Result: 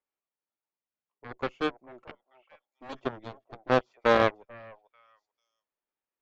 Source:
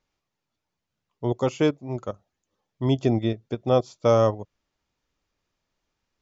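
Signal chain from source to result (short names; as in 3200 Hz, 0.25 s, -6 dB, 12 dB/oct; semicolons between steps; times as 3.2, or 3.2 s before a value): 2.02–2.93 minimum comb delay 3.6 ms; three-band isolator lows -17 dB, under 260 Hz, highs -20 dB, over 3000 Hz; delay with a stepping band-pass 0.443 s, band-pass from 830 Hz, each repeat 1.4 oct, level -7 dB; added harmonics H 2 -11 dB, 3 -14 dB, 7 -21 dB, 8 -27 dB, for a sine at -9 dBFS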